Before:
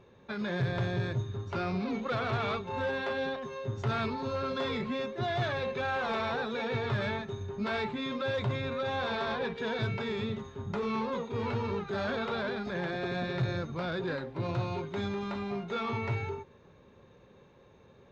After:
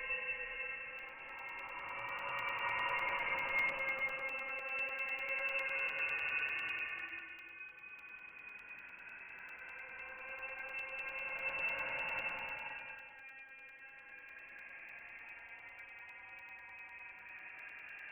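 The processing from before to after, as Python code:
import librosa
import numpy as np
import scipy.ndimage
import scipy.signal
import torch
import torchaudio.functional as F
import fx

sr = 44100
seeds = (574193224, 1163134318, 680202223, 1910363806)

y = scipy.signal.sosfilt(scipy.signal.butter(4, 620.0, 'highpass', fs=sr, output='sos'), x)
y = fx.over_compress(y, sr, threshold_db=-43.0, ratio=-0.5)
y = fx.dmg_noise_colour(y, sr, seeds[0], colour='white', level_db=-70.0)
y = fx.paulstretch(y, sr, seeds[1], factor=9.8, window_s=0.25, from_s=4.53)
y = fx.freq_invert(y, sr, carrier_hz=3200)
y = fx.buffer_crackle(y, sr, first_s=0.99, period_s=0.1, block=128, kind='zero')
y = y * 10.0 ** (3.5 / 20.0)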